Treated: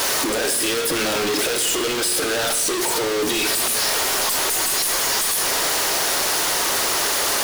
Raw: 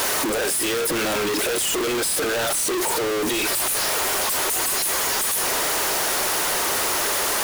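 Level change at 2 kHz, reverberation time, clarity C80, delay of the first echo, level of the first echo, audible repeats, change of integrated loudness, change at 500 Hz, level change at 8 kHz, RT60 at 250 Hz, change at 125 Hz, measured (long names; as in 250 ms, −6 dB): +1.5 dB, 1.6 s, 10.5 dB, no echo audible, no echo audible, no echo audible, +2.0 dB, +0.5 dB, +2.0 dB, 1.6 s, +0.5 dB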